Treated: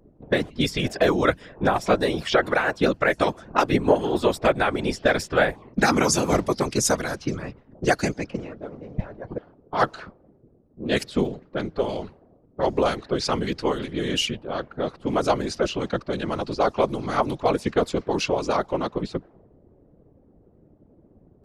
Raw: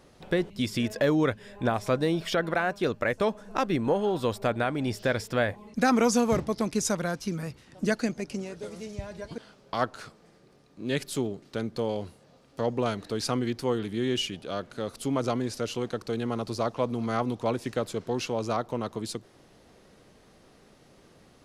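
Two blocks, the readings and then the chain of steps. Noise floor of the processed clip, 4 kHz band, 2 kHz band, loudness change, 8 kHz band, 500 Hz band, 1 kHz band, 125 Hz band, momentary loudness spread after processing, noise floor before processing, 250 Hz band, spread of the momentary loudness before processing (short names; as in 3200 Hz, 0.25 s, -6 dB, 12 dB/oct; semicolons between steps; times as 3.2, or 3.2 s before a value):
-57 dBFS, +6.0 dB, +7.0 dB, +5.0 dB, +6.0 dB, +5.0 dB, +6.5 dB, +3.0 dB, 13 LU, -58 dBFS, +2.5 dB, 11 LU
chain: low-pass opened by the level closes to 330 Hz, open at -24 dBFS; harmonic-percussive split percussive +8 dB; whisperiser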